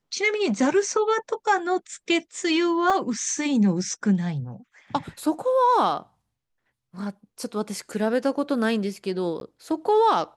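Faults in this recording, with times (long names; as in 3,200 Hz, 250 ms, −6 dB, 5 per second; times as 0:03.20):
0:02.90: drop-out 3 ms
0:09.40–0:09.41: drop-out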